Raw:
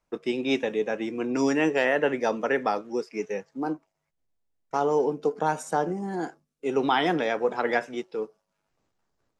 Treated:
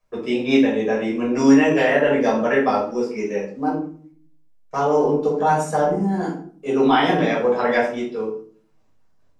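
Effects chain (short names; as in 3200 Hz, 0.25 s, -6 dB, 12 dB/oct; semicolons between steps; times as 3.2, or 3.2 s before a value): shoebox room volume 460 m³, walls furnished, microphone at 5.7 m; gain -2.5 dB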